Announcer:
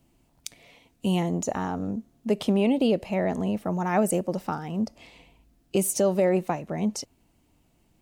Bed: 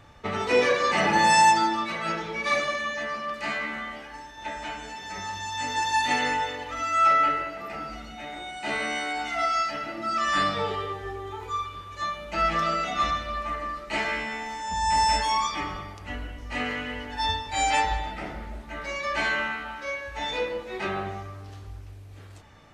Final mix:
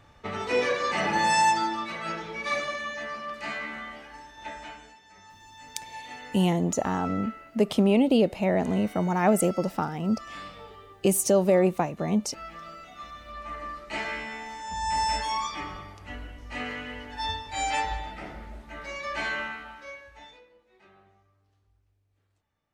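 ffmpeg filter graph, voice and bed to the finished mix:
-filter_complex "[0:a]adelay=5300,volume=1.19[s0];[1:a]volume=2.82,afade=t=out:st=4.48:d=0.53:silence=0.211349,afade=t=in:st=13.11:d=0.54:silence=0.223872,afade=t=out:st=19.4:d=1.01:silence=0.0668344[s1];[s0][s1]amix=inputs=2:normalize=0"

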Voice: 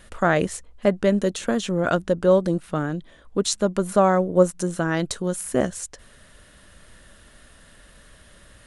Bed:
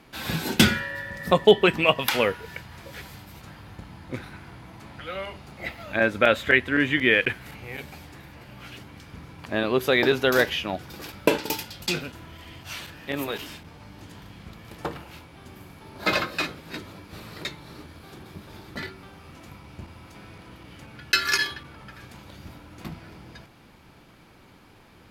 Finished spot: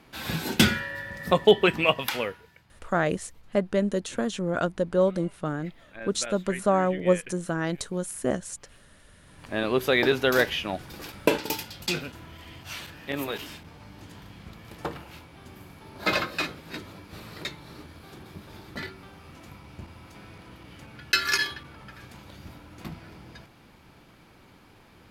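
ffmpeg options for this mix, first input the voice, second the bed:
-filter_complex "[0:a]adelay=2700,volume=0.562[s0];[1:a]volume=5.62,afade=t=out:st=1.87:d=0.65:silence=0.149624,afade=t=in:st=9.2:d=0.46:silence=0.141254[s1];[s0][s1]amix=inputs=2:normalize=0"

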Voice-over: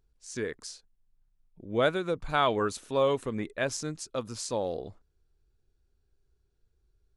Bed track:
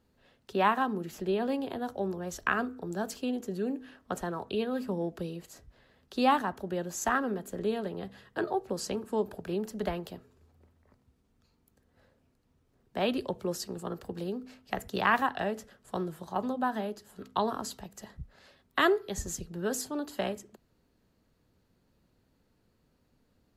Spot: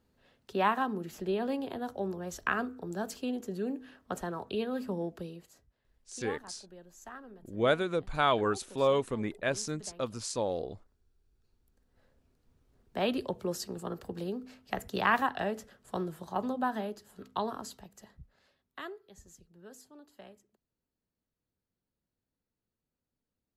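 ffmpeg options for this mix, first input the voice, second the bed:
-filter_complex "[0:a]adelay=5850,volume=0.891[s0];[1:a]volume=5.96,afade=t=out:st=4.99:d=0.78:silence=0.149624,afade=t=in:st=11.27:d=1.34:silence=0.133352,afade=t=out:st=16.62:d=2.29:silence=0.11885[s1];[s0][s1]amix=inputs=2:normalize=0"

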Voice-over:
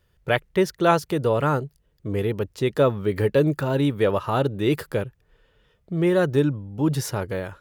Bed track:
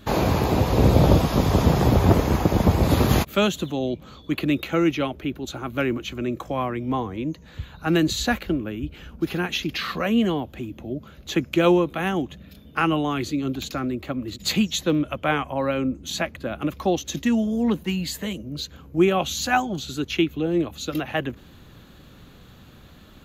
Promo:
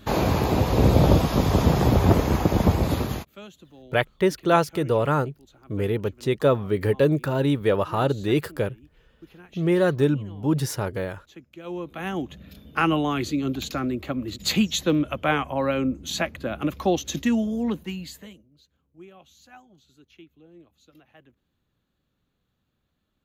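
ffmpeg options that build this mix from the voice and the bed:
-filter_complex "[0:a]adelay=3650,volume=0.944[s0];[1:a]volume=11.9,afade=t=out:st=2.68:d=0.62:silence=0.0841395,afade=t=in:st=11.64:d=0.89:silence=0.0749894,afade=t=out:st=17.16:d=1.32:silence=0.0398107[s1];[s0][s1]amix=inputs=2:normalize=0"

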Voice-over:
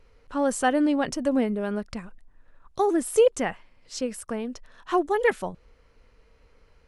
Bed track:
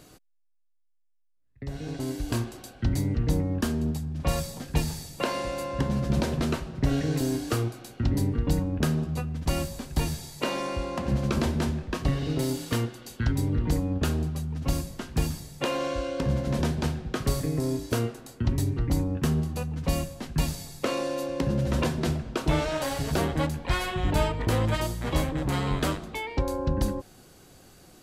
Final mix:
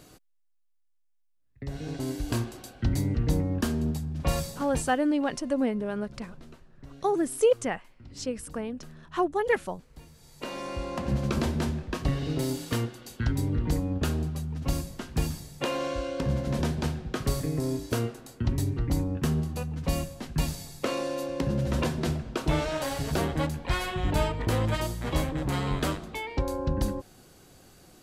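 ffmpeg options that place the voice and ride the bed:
-filter_complex "[0:a]adelay=4250,volume=0.708[s0];[1:a]volume=11.2,afade=t=out:st=4.48:d=0.49:silence=0.0749894,afade=t=in:st=10.13:d=0.8:silence=0.0841395[s1];[s0][s1]amix=inputs=2:normalize=0"

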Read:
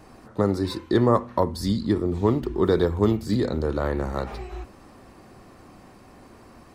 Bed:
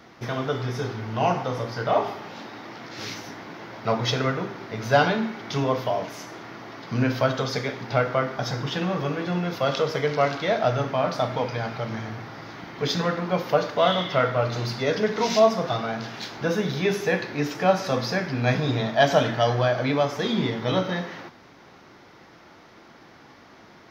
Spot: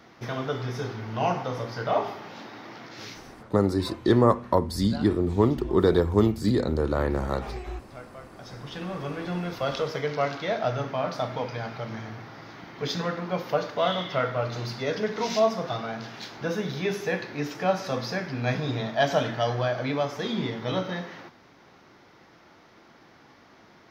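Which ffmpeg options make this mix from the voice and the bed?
-filter_complex "[0:a]adelay=3150,volume=1[s0];[1:a]volume=5.01,afade=t=out:st=2.78:d=0.76:silence=0.11885,afade=t=in:st=8.29:d=0.97:silence=0.141254[s1];[s0][s1]amix=inputs=2:normalize=0"

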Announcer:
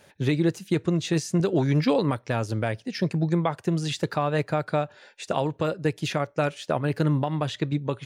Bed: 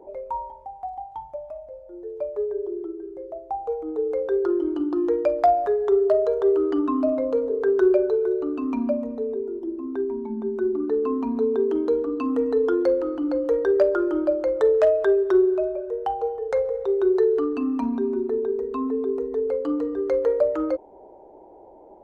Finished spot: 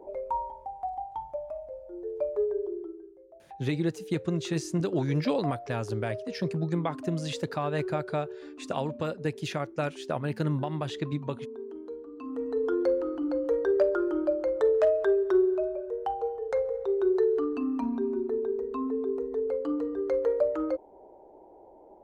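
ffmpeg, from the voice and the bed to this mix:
-filter_complex "[0:a]adelay=3400,volume=0.531[s0];[1:a]volume=3.98,afade=t=out:st=2.43:d=0.74:silence=0.141254,afade=t=in:st=12.12:d=0.71:silence=0.223872[s1];[s0][s1]amix=inputs=2:normalize=0"

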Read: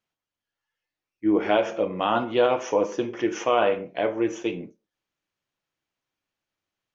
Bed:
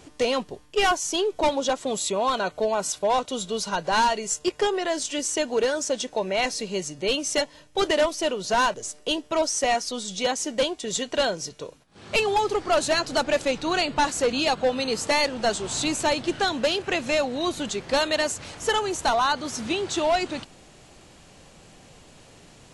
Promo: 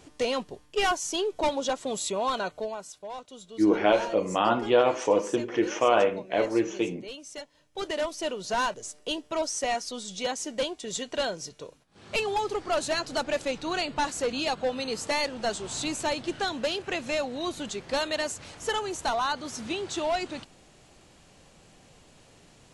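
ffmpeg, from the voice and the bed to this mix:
-filter_complex "[0:a]adelay=2350,volume=0.944[s0];[1:a]volume=2.24,afade=t=out:st=2.4:d=0.46:silence=0.237137,afade=t=in:st=7.5:d=0.79:silence=0.281838[s1];[s0][s1]amix=inputs=2:normalize=0"

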